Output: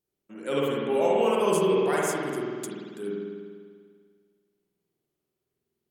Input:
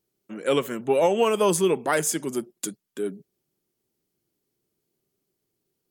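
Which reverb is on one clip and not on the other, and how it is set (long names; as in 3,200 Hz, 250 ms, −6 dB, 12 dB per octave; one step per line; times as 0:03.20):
spring reverb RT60 1.9 s, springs 49 ms, chirp 35 ms, DRR −5 dB
level −8.5 dB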